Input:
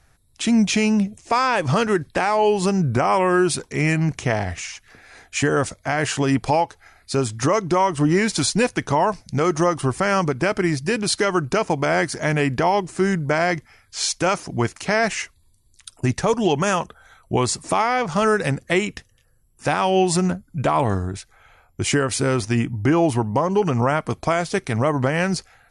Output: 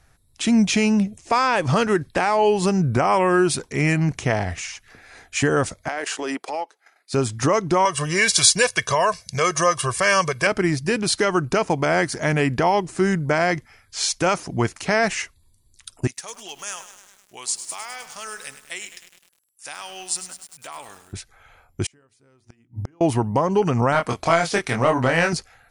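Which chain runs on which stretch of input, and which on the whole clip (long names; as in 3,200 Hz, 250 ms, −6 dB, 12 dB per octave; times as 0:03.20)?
0:05.88–0:07.13: high-pass filter 320 Hz 24 dB per octave + downward compressor, threshold −21 dBFS + transient designer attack −7 dB, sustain −11 dB
0:07.85–0:10.47: high-pass filter 49 Hz + tilt shelving filter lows −7 dB, about 1,100 Hz + comb filter 1.8 ms, depth 81%
0:16.07–0:21.13: first difference + feedback echo at a low word length 102 ms, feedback 80%, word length 7 bits, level −10.5 dB
0:21.86–0:23.01: mains-hum notches 60/120/180/240/300/360/420 Hz + gate with flip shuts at −15 dBFS, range −38 dB
0:23.92–0:25.33: mid-hump overdrive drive 8 dB, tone 7,900 Hz, clips at −8.5 dBFS + double-tracking delay 24 ms −4 dB
whole clip: no processing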